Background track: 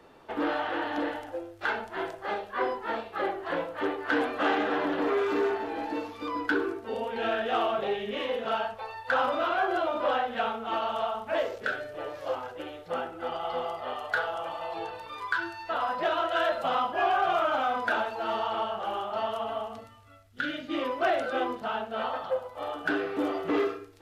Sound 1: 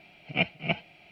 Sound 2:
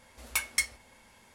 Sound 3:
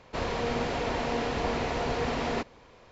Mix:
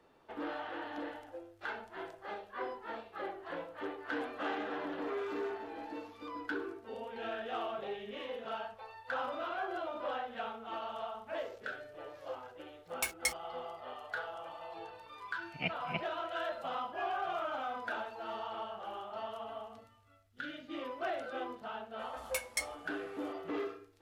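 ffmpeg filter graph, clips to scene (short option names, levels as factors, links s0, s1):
-filter_complex "[2:a]asplit=2[s0][s1];[0:a]volume=0.282[s2];[s0]acrusher=bits=5:mix=0:aa=0.5,atrim=end=1.34,asetpts=PTS-STARTPTS,volume=0.531,afade=t=in:d=0.004:c=hsin,afade=t=out:st=1.336:d=0.004:c=hsin,adelay=12670[s3];[1:a]atrim=end=1.11,asetpts=PTS-STARTPTS,volume=0.316,afade=t=in:d=0.004:c=hsin,afade=t=out:st=1.106:d=0.004:c=hsin,adelay=15250[s4];[s1]atrim=end=1.34,asetpts=PTS-STARTPTS,volume=0.398,afade=t=in:d=0.004:c=hsin,afade=t=out:st=1.336:d=0.004:c=hsin,adelay=21990[s5];[s2][s3][s4][s5]amix=inputs=4:normalize=0"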